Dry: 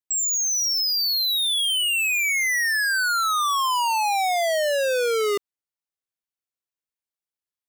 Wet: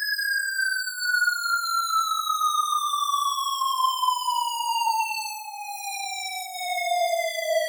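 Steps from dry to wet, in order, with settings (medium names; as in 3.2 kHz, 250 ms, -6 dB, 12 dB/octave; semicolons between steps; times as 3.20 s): chorus 0.79 Hz, delay 20 ms, depth 5.4 ms; frequency shift -21 Hz; Paulstretch 4.5×, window 0.05 s, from 2.79 s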